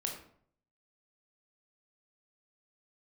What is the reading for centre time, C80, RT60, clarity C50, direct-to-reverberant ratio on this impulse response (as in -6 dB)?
28 ms, 9.0 dB, 0.60 s, 6.0 dB, 0.5 dB